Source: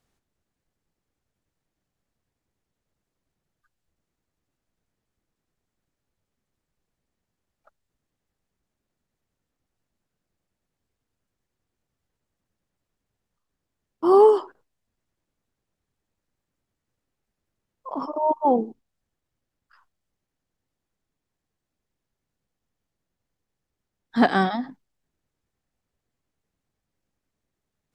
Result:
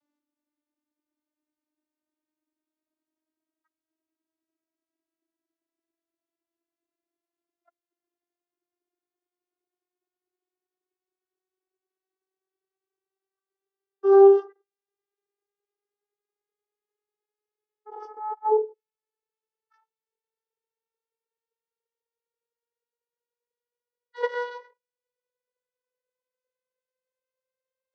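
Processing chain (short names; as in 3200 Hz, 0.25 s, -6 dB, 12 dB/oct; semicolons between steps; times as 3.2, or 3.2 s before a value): vocoder on a gliding note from D4, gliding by +10 st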